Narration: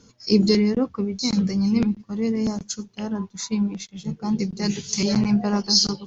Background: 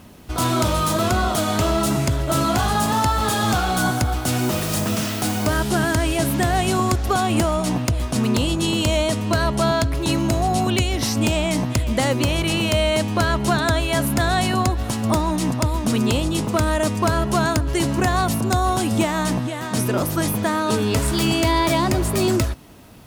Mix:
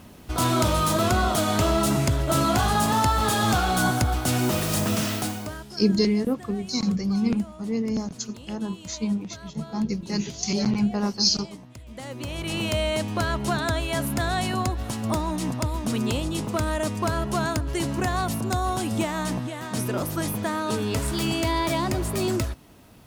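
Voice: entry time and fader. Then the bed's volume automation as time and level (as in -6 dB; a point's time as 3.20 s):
5.50 s, -3.0 dB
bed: 5.15 s -2 dB
5.76 s -23.5 dB
11.75 s -23.5 dB
12.61 s -6 dB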